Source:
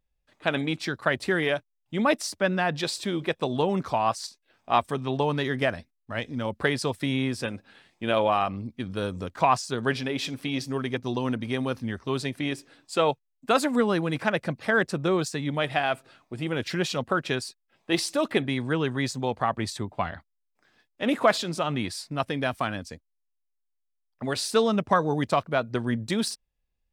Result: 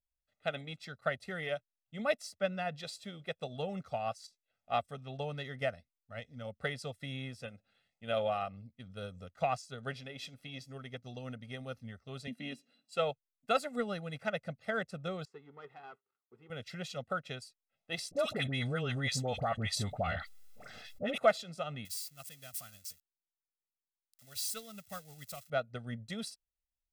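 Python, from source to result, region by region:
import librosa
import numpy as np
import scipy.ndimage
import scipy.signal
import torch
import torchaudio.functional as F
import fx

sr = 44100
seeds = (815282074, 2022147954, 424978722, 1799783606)

y = fx.chain(x, sr, fx.highpass(hz=160.0, slope=24),
    fx.small_body(hz=(230.0, 2800.0, 4000.0), ring_ms=75, db=17), at=(12.27, 12.96))
y = fx.chain(y, sr, fx.leveller(passes=3),
    fx.double_bandpass(hz=630.0, octaves=1.3), at=(15.25, 16.5))
y = fx.chain(y, sr, fx.dispersion(late='highs', ms=55.0, hz=1100.0),
    fx.env_flatten(amount_pct=70), at=(18.11, 21.18))
y = fx.chain(y, sr, fx.crossing_spikes(level_db=-22.0),
    fx.peak_eq(hz=510.0, db=-11.0, octaves=2.9),
    fx.upward_expand(threshold_db=-40.0, expansion=1.5), at=(21.85, 25.5))
y = fx.peak_eq(y, sr, hz=980.0, db=-9.0, octaves=0.42)
y = y + 0.78 * np.pad(y, (int(1.5 * sr / 1000.0), 0))[:len(y)]
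y = fx.upward_expand(y, sr, threshold_db=-39.0, expansion=1.5)
y = y * 10.0 ** (-7.5 / 20.0)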